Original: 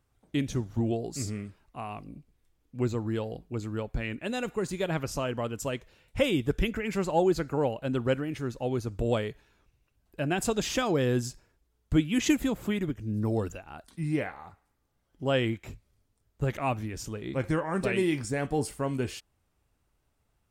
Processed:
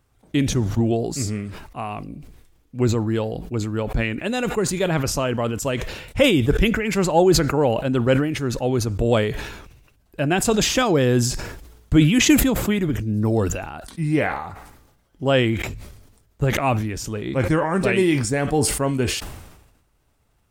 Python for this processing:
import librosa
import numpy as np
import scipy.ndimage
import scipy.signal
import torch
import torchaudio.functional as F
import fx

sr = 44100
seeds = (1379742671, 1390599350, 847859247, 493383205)

y = fx.sustainer(x, sr, db_per_s=54.0)
y = y * 10.0 ** (8.0 / 20.0)